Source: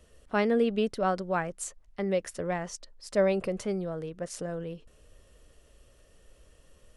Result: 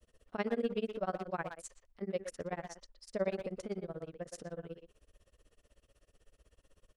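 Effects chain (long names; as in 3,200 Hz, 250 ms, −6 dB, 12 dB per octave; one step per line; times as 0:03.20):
granular cloud 64 ms, grains 16 per second, spray 12 ms, pitch spread up and down by 0 semitones
far-end echo of a speakerphone 120 ms, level −6 dB
level −5.5 dB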